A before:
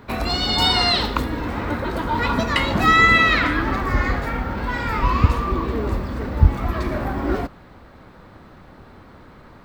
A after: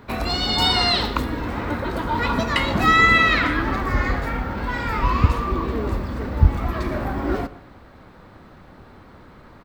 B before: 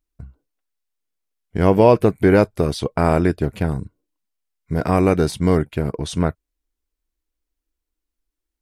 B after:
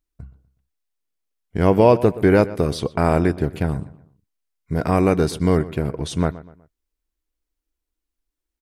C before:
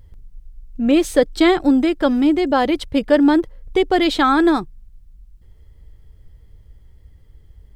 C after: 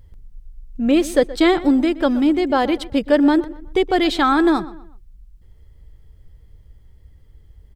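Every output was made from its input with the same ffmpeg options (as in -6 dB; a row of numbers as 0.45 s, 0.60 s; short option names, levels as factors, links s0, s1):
-filter_complex "[0:a]asplit=2[s0][s1];[s1]adelay=123,lowpass=f=3100:p=1,volume=0.141,asplit=2[s2][s3];[s3]adelay=123,lowpass=f=3100:p=1,volume=0.38,asplit=2[s4][s5];[s5]adelay=123,lowpass=f=3100:p=1,volume=0.38[s6];[s0][s2][s4][s6]amix=inputs=4:normalize=0,volume=0.891"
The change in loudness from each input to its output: -1.0 LU, -1.0 LU, -1.0 LU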